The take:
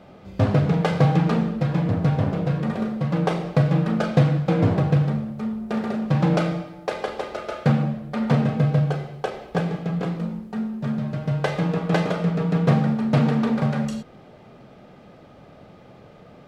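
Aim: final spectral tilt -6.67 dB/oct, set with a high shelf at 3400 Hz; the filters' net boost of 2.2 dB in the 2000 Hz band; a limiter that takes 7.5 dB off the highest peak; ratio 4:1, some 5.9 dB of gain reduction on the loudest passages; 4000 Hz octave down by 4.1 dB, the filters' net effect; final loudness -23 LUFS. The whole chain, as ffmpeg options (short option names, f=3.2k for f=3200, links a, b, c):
-af "equalizer=f=2k:t=o:g=5,highshelf=f=3.4k:g=-4,equalizer=f=4k:t=o:g=-5,acompressor=threshold=-20dB:ratio=4,volume=4dB,alimiter=limit=-13dB:level=0:latency=1"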